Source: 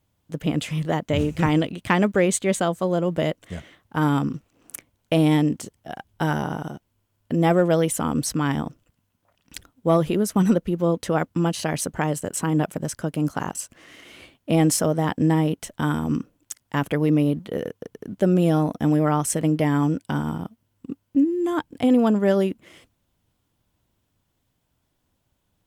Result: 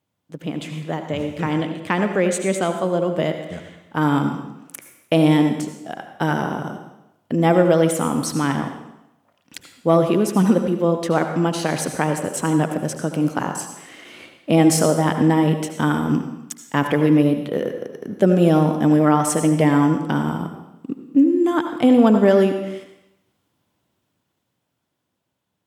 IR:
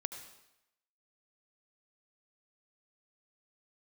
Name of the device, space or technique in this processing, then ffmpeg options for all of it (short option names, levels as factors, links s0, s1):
far laptop microphone: -filter_complex "[1:a]atrim=start_sample=2205[s0];[0:a][s0]afir=irnorm=-1:irlink=0,highpass=150,dynaudnorm=f=320:g=13:m=3.76,highshelf=f=6100:g=-5,volume=0.841"